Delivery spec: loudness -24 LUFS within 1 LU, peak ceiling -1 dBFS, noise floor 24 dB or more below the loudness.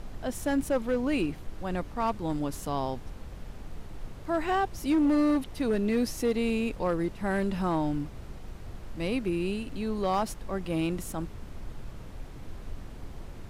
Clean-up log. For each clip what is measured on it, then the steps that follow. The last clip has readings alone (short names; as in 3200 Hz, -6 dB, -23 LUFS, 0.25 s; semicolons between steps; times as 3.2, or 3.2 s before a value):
clipped 1.0%; flat tops at -20.0 dBFS; noise floor -44 dBFS; noise floor target -54 dBFS; loudness -30.0 LUFS; peak -20.0 dBFS; loudness target -24.0 LUFS
-> clip repair -20 dBFS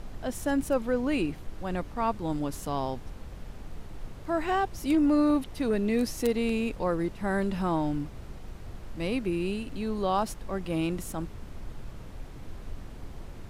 clipped 0.0%; noise floor -44 dBFS; noise floor target -54 dBFS
-> noise print and reduce 10 dB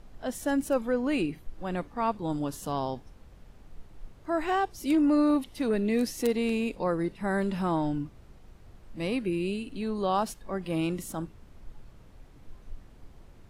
noise floor -53 dBFS; noise floor target -54 dBFS
-> noise print and reduce 6 dB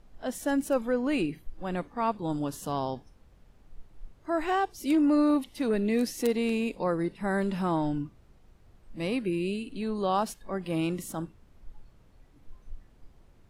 noise floor -58 dBFS; loudness -29.5 LUFS; peak -11.5 dBFS; loudness target -24.0 LUFS
-> gain +5.5 dB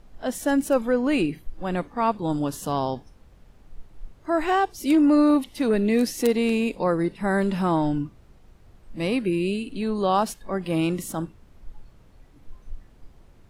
loudness -24.0 LUFS; peak -6.0 dBFS; noise floor -53 dBFS